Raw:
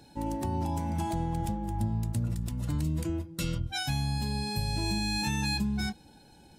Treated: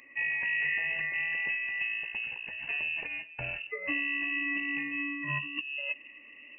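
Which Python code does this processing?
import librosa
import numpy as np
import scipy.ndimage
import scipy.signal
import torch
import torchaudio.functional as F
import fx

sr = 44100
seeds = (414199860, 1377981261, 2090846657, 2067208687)

y = fx.highpass(x, sr, hz=fx.steps((0.0, 280.0), (5.39, 75.0)), slope=12)
y = fx.over_compress(y, sr, threshold_db=-35.0, ratio=-0.5)
y = fx.fixed_phaser(y, sr, hz=2200.0, stages=8)
y = fx.doubler(y, sr, ms=14.0, db=-11)
y = fx.freq_invert(y, sr, carrier_hz=2800)
y = y * librosa.db_to_amplitude(6.5)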